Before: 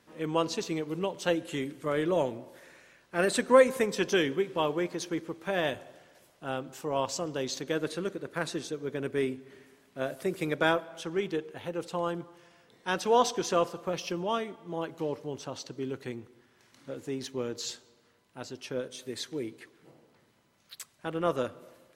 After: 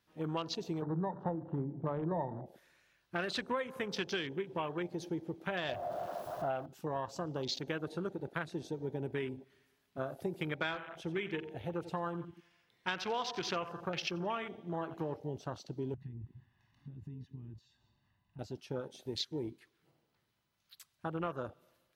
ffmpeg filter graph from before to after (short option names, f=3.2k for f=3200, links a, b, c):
-filter_complex "[0:a]asettb=1/sr,asplit=3[a][b][c];[a]atrim=end=0.824[d];[b]atrim=start=0.82:end=2.46,asetpts=PTS-STARTPTS,afade=t=in:d=0.004:c=qsin,afade=t=out:st=1.636:d=0.004:c=qsin,lowpass=f=880:t=q:w=3.9,equalizer=f=160:t=o:w=1.8:g=11.5,bandreject=f=50:t=h:w=6,bandreject=f=100:t=h:w=6,bandreject=f=150:t=h:w=6,bandreject=f=200:t=h:w=6,bandreject=f=250:t=h:w=6,bandreject=f=300:t=h:w=6,bandreject=f=350:t=h:w=6[e];[c]atrim=start=2.456[f];[d][e]acrossfade=d=0.004:c1=hsin:c2=qsin[g];[g][f]acrossfade=d=0.004:c1=qsin:c2=hsin,asettb=1/sr,asplit=3[h][i][j];[h]atrim=end=5.694[k];[i]atrim=start=5.69:end=6.66,asetpts=PTS-STARTPTS,afade=t=in:d=0.004:c=qsin,afade=t=out:st=0.966:d=0.004:c=qsin,aeval=exprs='val(0)+0.5*0.00891*sgn(val(0))':c=same,equalizer=f=670:t=o:w=0.48:g=14.5[l];[j]atrim=start=6.656[m];[k][l]acrossfade=d=0.004:c1=hsin:c2=qsin[n];[n][m]acrossfade=d=0.004:c1=qsin:c2=hsin,asettb=1/sr,asplit=3[o][p][q];[o]atrim=end=10.534[r];[p]atrim=start=10.53:end=15.16,asetpts=PTS-STARTPTS,afade=t=in:d=0.004:c=qsin,afade=t=out:st=4.626:d=0.004:c=qsin,equalizer=f=2.2k:w=2.1:g=7,aecho=1:1:88|176|264|352:0.211|0.0888|0.0373|0.0157,atrim=end_sample=204183[s];[q]atrim=start=15.156[t];[r][s]acrossfade=d=0.004:c1=hsin:c2=qsin[u];[u][t]acrossfade=d=0.004:c1=qsin:c2=hsin,asettb=1/sr,asplit=3[v][w][x];[v]atrim=end=15.944[y];[w]atrim=start=15.94:end=18.39,asetpts=PTS-STARTPTS,afade=t=in:d=0.004:c=qsin,afade=t=out:st=2.446:d=0.004:c=qsin,aecho=1:1:1.1:0.8,atrim=end_sample=108045,acompressor=threshold=-52dB:ratio=4:attack=3.2:release=140:knee=1:detection=peak,bass=f=250:g=8,treble=f=4k:g=-14[z];[x]atrim=start=18.386[aa];[y][z]acrossfade=d=0.004:c1=hsin:c2=qsin[ab];[ab][aa]acrossfade=d=0.004:c1=qsin:c2=hsin,afwtdn=0.0112,equalizer=f=125:t=o:w=1:g=-3,equalizer=f=250:t=o:w=1:g=-9,equalizer=f=500:t=o:w=1:g=-10,equalizer=f=1k:t=o:w=1:g=-4,equalizer=f=2k:t=o:w=1:g=-5,equalizer=f=8k:t=o:w=1:g=-8,acompressor=threshold=-43dB:ratio=6,volume=9.5dB"